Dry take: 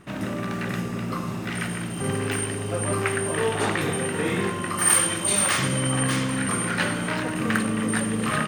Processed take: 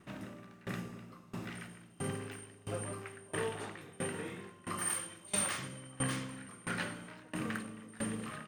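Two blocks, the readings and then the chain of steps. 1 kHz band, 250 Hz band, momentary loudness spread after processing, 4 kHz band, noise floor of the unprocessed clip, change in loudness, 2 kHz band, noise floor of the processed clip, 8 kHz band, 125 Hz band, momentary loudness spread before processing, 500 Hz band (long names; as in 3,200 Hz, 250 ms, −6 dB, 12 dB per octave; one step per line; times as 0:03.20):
−16.0 dB, −16.0 dB, 13 LU, −16.0 dB, −31 dBFS, −15.5 dB, −16.0 dB, −58 dBFS, −15.5 dB, −16.0 dB, 9 LU, −15.5 dB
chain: tremolo with a ramp in dB decaying 1.5 Hz, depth 23 dB
level −8.5 dB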